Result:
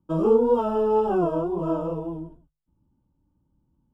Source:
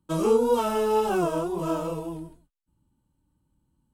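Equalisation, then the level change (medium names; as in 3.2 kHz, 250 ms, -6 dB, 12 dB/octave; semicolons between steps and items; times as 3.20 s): boxcar filter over 21 samples; hum notches 50/100/150 Hz; +3.0 dB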